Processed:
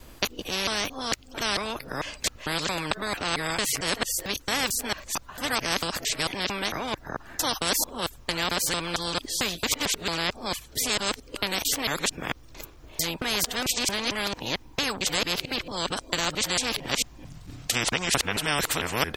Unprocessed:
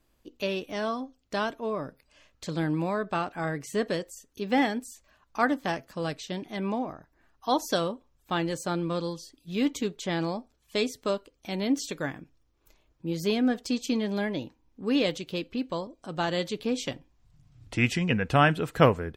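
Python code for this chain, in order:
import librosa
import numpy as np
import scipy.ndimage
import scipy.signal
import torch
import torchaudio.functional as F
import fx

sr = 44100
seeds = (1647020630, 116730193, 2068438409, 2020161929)

y = fx.local_reverse(x, sr, ms=224.0)
y = fx.spectral_comp(y, sr, ratio=4.0)
y = y * librosa.db_to_amplitude(-2.0)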